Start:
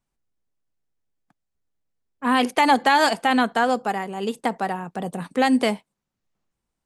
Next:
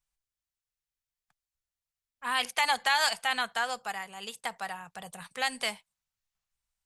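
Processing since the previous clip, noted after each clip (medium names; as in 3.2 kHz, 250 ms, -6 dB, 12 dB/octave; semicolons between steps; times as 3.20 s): amplifier tone stack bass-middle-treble 10-0-10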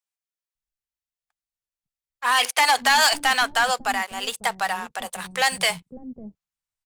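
waveshaping leveller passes 3; bands offset in time highs, lows 550 ms, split 330 Hz; trim +1.5 dB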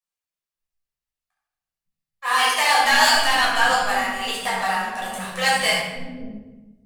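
reverberation RT60 1.1 s, pre-delay 10 ms, DRR -8 dB; trim -8.5 dB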